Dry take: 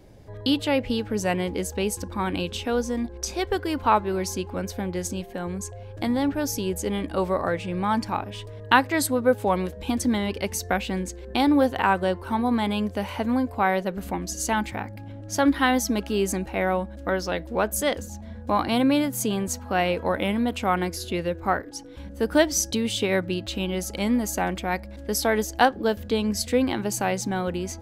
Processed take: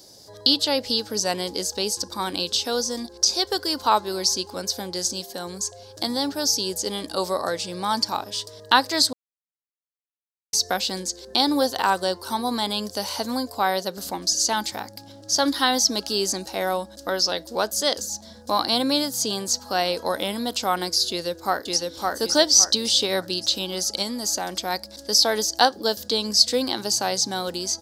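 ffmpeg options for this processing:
ffmpeg -i in.wav -filter_complex "[0:a]asplit=2[link_01][link_02];[link_02]afade=type=in:start_time=21.09:duration=0.01,afade=type=out:start_time=22.1:duration=0.01,aecho=0:1:560|1120|1680|2240|2800:0.794328|0.278015|0.0973052|0.0340568|0.0119199[link_03];[link_01][link_03]amix=inputs=2:normalize=0,asettb=1/sr,asplit=3[link_04][link_05][link_06];[link_04]atrim=end=24.024[link_07];[link_05]atrim=start=24.02:end=24.6,asetpts=PTS-STARTPTS,afade=type=in:duration=0.004:curve=qsin,afade=type=out:start_time=0.576:duration=0.004:curve=qsin,acompressor=threshold=-25dB:ratio=2:attack=3.2:release=140:knee=1:detection=peak[link_08];[link_06]atrim=start=24.596[link_09];[link_07][link_08]acrossfade=duration=0.004:curve1=hsin:curve2=qsin[link_10];[link_10][link_09]acrossfade=duration=0.004:curve1=qsin:curve2=hsin,asplit=3[link_11][link_12][link_13];[link_11]atrim=end=9.13,asetpts=PTS-STARTPTS,afade=type=out:start_time=9.126:duration=0.004:curve=hsin[link_14];[link_12]atrim=start=9.13:end=10.53,asetpts=PTS-STARTPTS,volume=0[link_15];[link_13]atrim=start=10.53,asetpts=PTS-STARTPTS,afade=type=in:duration=0.004:curve=hsin[link_16];[link_14][link_15][link_16]concat=n=3:v=0:a=1,highpass=frequency=560:poles=1,acrossover=split=4400[link_17][link_18];[link_18]acompressor=threshold=-48dB:ratio=4:attack=1:release=60[link_19];[link_17][link_19]amix=inputs=2:normalize=0,highshelf=frequency=3400:width_type=q:width=3:gain=12.5,volume=3dB" out.wav

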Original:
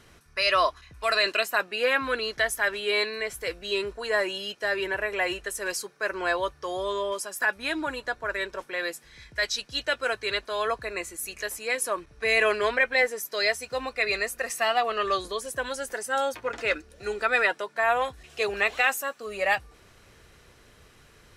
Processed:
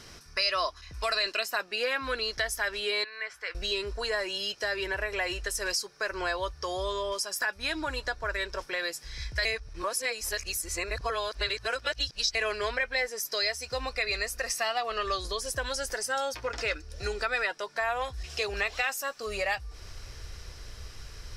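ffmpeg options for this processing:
ffmpeg -i in.wav -filter_complex "[0:a]asettb=1/sr,asplit=3[link_01][link_02][link_03];[link_01]atrim=end=3.044[link_04];[link_02]atrim=start=3.04:end=3.55,asetpts=PTS-STARTPTS,afade=type=in:duration=0.004:curve=qsin,afade=type=out:start_time=0.506:duration=0.004:curve=qsin,bandpass=frequency=1500:width_type=q:width=1.8[link_05];[link_03]atrim=start=3.546[link_06];[link_04][link_05]acrossfade=duration=0.004:curve1=hsin:curve2=qsin[link_07];[link_07][link_06]acrossfade=duration=0.004:curve1=qsin:curve2=hsin,asplit=3[link_08][link_09][link_10];[link_08]atrim=end=9.452[link_11];[link_09]atrim=start=9.448:end=12.352,asetpts=PTS-STARTPTS,areverse[link_12];[link_10]atrim=start=12.348[link_13];[link_11][link_12]acrossfade=duration=0.004:curve1=hsin:curve2=hsin[link_14];[link_14][link_13]acrossfade=duration=0.004:curve1=hsin:curve2=hsin,equalizer=frequency=5200:width=2.5:gain=13,acompressor=threshold=-35dB:ratio=2.5,asubboost=boost=6.5:cutoff=76,volume=4dB" out.wav

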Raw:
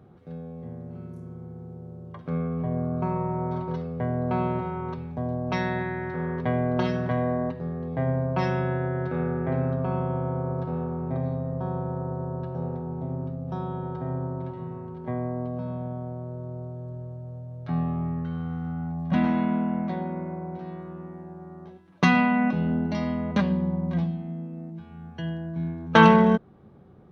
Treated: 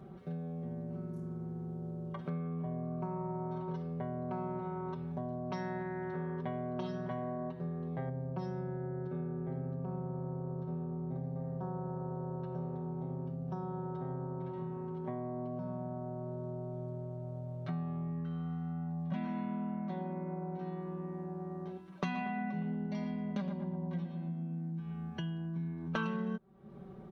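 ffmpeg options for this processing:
ffmpeg -i in.wav -filter_complex "[0:a]asettb=1/sr,asplit=3[link_01][link_02][link_03];[link_01]atrim=end=8.094[link_04];[link_02]atrim=start=8.09:end=11.36,asetpts=PTS-STARTPTS,afade=type=in:duration=0.004:curve=qsin,afade=type=out:start_time=3.266:duration=0.004:curve=qsin,equalizer=frequency=2000:width=0.34:gain=-10[link_05];[link_03]atrim=start=11.356[link_06];[link_04][link_05]acrossfade=duration=0.004:curve1=hsin:curve2=qsin[link_07];[link_07][link_06]acrossfade=duration=0.004:curve1=qsin:curve2=hsin,asplit=3[link_08][link_09][link_10];[link_08]afade=type=out:start_time=22.14:duration=0.02[link_11];[link_09]asplit=2[link_12][link_13];[link_13]adelay=116,lowpass=frequency=2000:poles=1,volume=-6.5dB,asplit=2[link_14][link_15];[link_15]adelay=116,lowpass=frequency=2000:poles=1,volume=0.47,asplit=2[link_16][link_17];[link_17]adelay=116,lowpass=frequency=2000:poles=1,volume=0.47,asplit=2[link_18][link_19];[link_19]adelay=116,lowpass=frequency=2000:poles=1,volume=0.47,asplit=2[link_20][link_21];[link_21]adelay=116,lowpass=frequency=2000:poles=1,volume=0.47,asplit=2[link_22][link_23];[link_23]adelay=116,lowpass=frequency=2000:poles=1,volume=0.47[link_24];[link_12][link_14][link_16][link_18][link_20][link_22][link_24]amix=inputs=7:normalize=0,afade=type=in:start_time=22.14:duration=0.02,afade=type=out:start_time=24.93:duration=0.02[link_25];[link_10]afade=type=in:start_time=24.93:duration=0.02[link_26];[link_11][link_25][link_26]amix=inputs=3:normalize=0,bandreject=frequency=860:width=20,aecho=1:1:5.2:0.79,acompressor=threshold=-38dB:ratio=4" out.wav

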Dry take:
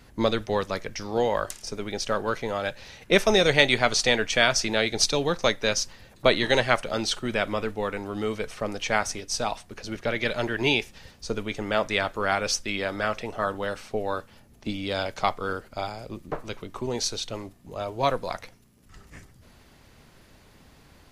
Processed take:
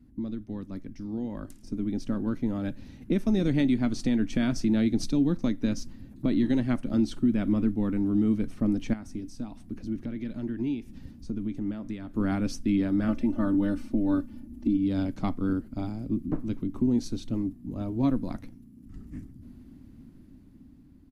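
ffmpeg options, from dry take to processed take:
ffmpeg -i in.wav -filter_complex "[0:a]asettb=1/sr,asplit=3[link_01][link_02][link_03];[link_01]atrim=end=8.934[link_04];[link_02]atrim=start=8.93:end=12.14,asetpts=PTS-STARTPTS,afade=type=in:duration=0.004:curve=qsin,afade=type=out:start_time=3.206:duration=0.004:curve=qsin,acompressor=threshold=-38dB:ratio=2.5:attack=3.2:release=140:knee=1:detection=peak[link_05];[link_03]atrim=start=12.136[link_06];[link_04][link_05]acrossfade=duration=0.004:curve1=hsin:curve2=qsin[link_07];[link_07][link_06]acrossfade=duration=0.004:curve1=qsin:curve2=hsin,asettb=1/sr,asplit=3[link_08][link_09][link_10];[link_08]atrim=end=13.084[link_11];[link_09]atrim=start=13.08:end=14.77,asetpts=PTS-STARTPTS,afade=type=in:duration=0.004:curve=qsin,afade=type=out:start_time=1.686:duration=0.004:curve=qsin,aecho=1:1:3.4:0.98,atrim=end_sample=74529[link_12];[link_10]atrim=start=14.766[link_13];[link_11][link_12]acrossfade=duration=0.004:curve1=hsin:curve2=qsin[link_14];[link_14][link_13]acrossfade=duration=0.004:curve1=qsin:curve2=hsin,firequalizer=gain_entry='entry(150,0);entry(270,11);entry(430,-15);entry(780,-18);entry(2800,-21);entry(6600,-21);entry(11000,-15)':delay=0.05:min_phase=1,alimiter=limit=-22dB:level=0:latency=1:release=236,dynaudnorm=framelen=540:gausssize=7:maxgain=10dB,volume=-4dB" out.wav

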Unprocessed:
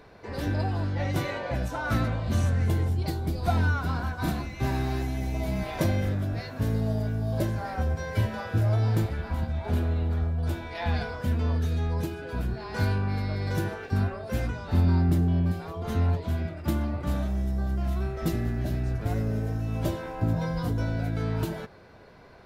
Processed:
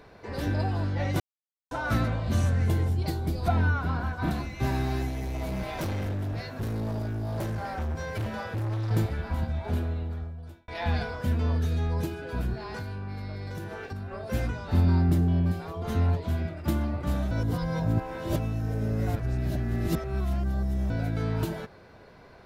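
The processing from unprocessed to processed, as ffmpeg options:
ffmpeg -i in.wav -filter_complex "[0:a]asettb=1/sr,asplit=3[link_01][link_02][link_03];[link_01]atrim=end=3.484[link_04];[link_02]atrim=start=3.48:end=4.31,asetpts=PTS-STARTPTS,afade=type=in:duration=0.004:curve=qsin,afade=type=out:start_time=0.826:duration=0.004:curve=qsin,acrossover=split=3400[link_05][link_06];[link_06]acompressor=threshold=-59dB:ratio=4:attack=1:release=60[link_07];[link_05][link_07]amix=inputs=2:normalize=0[link_08];[link_03]atrim=start=4.306[link_09];[link_04][link_08]acrossfade=duration=0.004:curve1=hsin:curve2=qsin[link_10];[link_10][link_09]acrossfade=duration=0.004:curve1=qsin:curve2=hsin,asettb=1/sr,asplit=3[link_11][link_12][link_13];[link_11]atrim=end=5.094[link_14];[link_12]atrim=start=5.09:end=8.91,asetpts=PTS-STARTPTS,afade=type=in:duration=0.004:curve=qsin,afade=type=out:start_time=3.816:duration=0.004:curve=qsin,volume=28dB,asoftclip=hard,volume=-28dB[link_15];[link_13]atrim=start=8.906[link_16];[link_14][link_15]acrossfade=duration=0.004:curve1=hsin:curve2=qsin[link_17];[link_17][link_16]acrossfade=duration=0.004:curve1=qsin:curve2=hsin,asettb=1/sr,asplit=3[link_18][link_19][link_20];[link_18]atrim=end=12.724[link_21];[link_19]atrim=start=12.72:end=14.14,asetpts=PTS-STARTPTS,afade=type=in:duration=0.004:curve=qsin,afade=type=out:start_time=1.416:duration=0.004:curve=qsin,acompressor=threshold=-32dB:ratio=8:attack=3.2:release=140:knee=1:detection=peak[link_22];[link_20]atrim=start=14.136[link_23];[link_21][link_22]acrossfade=duration=0.004:curve1=hsin:curve2=qsin[link_24];[link_24][link_23]acrossfade=duration=0.004:curve1=qsin:curve2=hsin,asplit=6[link_25][link_26][link_27][link_28][link_29][link_30];[link_25]atrim=end=1.2,asetpts=PTS-STARTPTS,afade=type=out:start_time=1.196:duration=0.004:curve=hsin[link_31];[link_26]atrim=start=1.2:end=1.71,asetpts=PTS-STARTPTS,volume=0[link_32];[link_27]atrim=start=1.71:end=10.68,asetpts=PTS-STARTPTS,afade=type=in:duration=0.004:curve=hsin,afade=type=out:start_time=7.78:duration=1.19[link_33];[link_28]atrim=start=10.68:end=17.312,asetpts=PTS-STARTPTS,afade=type=in:duration=0.004:curve=hsin[link_34];[link_29]atrim=start=17.308:end=20.902,asetpts=PTS-STARTPTS,areverse[link_35];[link_30]atrim=start=20.898[link_36];[link_31][link_32][link_33][link_34]concat=n=4:v=0:a=1[link_37];[link_37][link_35]acrossfade=duration=0.004:curve1=hsin:curve2=hsin[link_38];[link_38][link_36]acrossfade=duration=0.004:curve1=hsin:curve2=hsin" out.wav

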